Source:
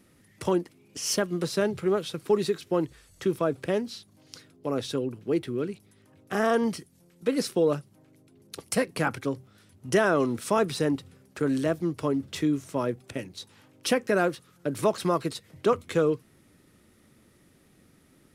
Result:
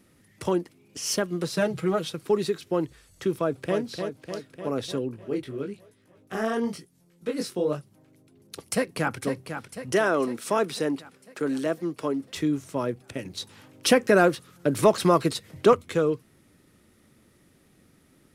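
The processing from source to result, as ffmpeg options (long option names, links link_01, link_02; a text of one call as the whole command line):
ffmpeg -i in.wav -filter_complex "[0:a]asettb=1/sr,asplit=3[link_01][link_02][link_03];[link_01]atrim=end=1.564[link_04];[link_02]atrim=start=1.56:end=2.1,asetpts=PTS-STARTPTS,afade=type=in:duration=0.004:curve=qsin,afade=type=out:start_time=0.536:duration=0.004:curve=qsin,aecho=1:1:6.3:0.9,atrim=end_sample=23814[link_05];[link_03]atrim=start=2.096[link_06];[link_04][link_05]acrossfade=duration=0.004:curve1=hsin:curve2=qsin[link_07];[link_07][link_06]acrossfade=duration=0.004:curve1=qsin:curve2=hsin,asplit=2[link_08][link_09];[link_09]afade=type=in:start_time=3.39:duration=0.01,afade=type=out:start_time=3.79:duration=0.01,aecho=0:1:300|600|900|1200|1500|1800|2100|2400|2700|3000:0.501187|0.325772|0.211752|0.137639|0.0894651|0.0581523|0.037799|0.0245693|0.0159701|0.0103805[link_10];[link_08][link_10]amix=inputs=2:normalize=0,asplit=3[link_11][link_12][link_13];[link_11]afade=type=out:start_time=5.08:duration=0.02[link_14];[link_12]flanger=delay=16:depth=6.7:speed=1,afade=type=in:start_time=5.08:duration=0.02,afade=type=out:start_time=7.77:duration=0.02[link_15];[link_13]afade=type=in:start_time=7.77:duration=0.02[link_16];[link_14][link_15][link_16]amix=inputs=3:normalize=0,asplit=2[link_17][link_18];[link_18]afade=type=in:start_time=8.72:duration=0.01,afade=type=out:start_time=9.17:duration=0.01,aecho=0:1:500|1000|1500|2000|2500|3000|3500|4000:0.398107|0.238864|0.143319|0.0859911|0.0515947|0.0309568|0.0185741|0.0111445[link_19];[link_17][link_19]amix=inputs=2:normalize=0,asettb=1/sr,asplit=3[link_20][link_21][link_22];[link_20]atrim=end=9.924[link_23];[link_21]atrim=start=9.92:end=12.37,asetpts=PTS-STARTPTS,afade=type=in:duration=0.004:curve=qsin,afade=type=out:start_time=2.446:duration=0.004:curve=qsin,highpass=220[link_24];[link_22]atrim=start=12.366[link_25];[link_23][link_24]acrossfade=duration=0.004:curve1=hsin:curve2=qsin[link_26];[link_26][link_25]acrossfade=duration=0.004:curve1=qsin:curve2=hsin,asettb=1/sr,asplit=3[link_27][link_28][link_29];[link_27]atrim=end=13.254[link_30];[link_28]atrim=start=13.25:end=15.75,asetpts=PTS-STARTPTS,afade=type=in:duration=0.004:curve=qsin,afade=type=out:start_time=2.496:duration=0.004:curve=qsin,acontrast=46[link_31];[link_29]atrim=start=15.746[link_32];[link_30][link_31]acrossfade=duration=0.004:curve1=hsin:curve2=qsin[link_33];[link_33][link_32]acrossfade=duration=0.004:curve1=qsin:curve2=hsin" out.wav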